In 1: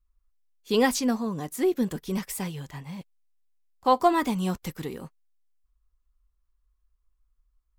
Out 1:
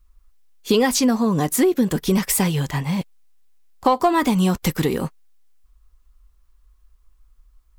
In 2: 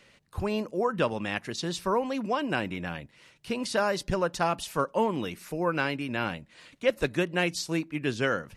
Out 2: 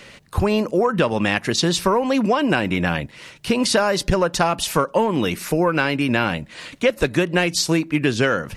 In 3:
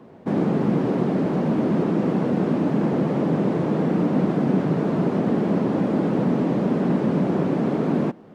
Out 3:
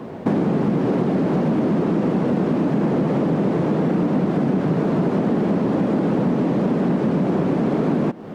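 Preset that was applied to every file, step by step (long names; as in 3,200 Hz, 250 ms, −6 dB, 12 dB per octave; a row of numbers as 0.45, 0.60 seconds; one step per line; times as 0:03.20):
in parallel at −4 dB: soft clipping −18.5 dBFS
on the sum: downward compressor 6 to 1, threshold −26 dBFS
loudness normalisation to −20 LKFS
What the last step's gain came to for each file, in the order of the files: +11.5, +11.5, +9.0 decibels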